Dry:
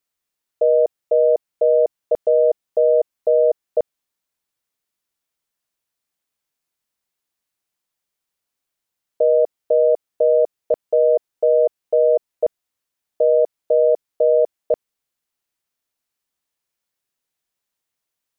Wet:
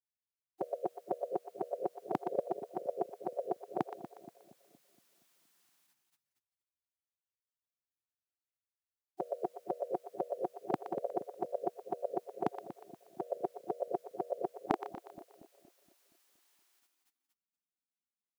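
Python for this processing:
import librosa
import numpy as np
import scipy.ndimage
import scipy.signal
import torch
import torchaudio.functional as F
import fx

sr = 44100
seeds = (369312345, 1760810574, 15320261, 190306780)

y = fx.highpass(x, sr, hz=fx.steps((0.0, 140.0), (14.71, 340.0)), slope=24)
y = fx.echo_split(y, sr, split_hz=490.0, low_ms=235, high_ms=120, feedback_pct=52, wet_db=-11.0)
y = fx.spec_gate(y, sr, threshold_db=-20, keep='weak')
y = y * librosa.db_to_amplitude(9.5)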